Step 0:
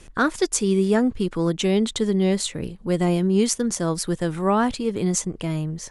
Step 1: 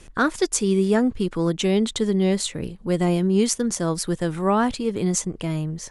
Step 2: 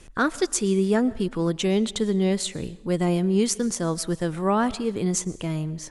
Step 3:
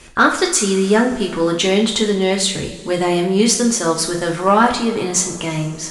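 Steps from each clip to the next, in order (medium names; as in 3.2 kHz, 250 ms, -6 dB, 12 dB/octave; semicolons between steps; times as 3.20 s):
no audible change
algorithmic reverb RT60 0.8 s, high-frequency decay 0.95×, pre-delay 80 ms, DRR 19.5 dB; trim -2 dB
two-slope reverb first 0.39 s, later 3.2 s, from -21 dB, DRR 0 dB; overdrive pedal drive 8 dB, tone 7.3 kHz, clips at -6 dBFS; trim +6 dB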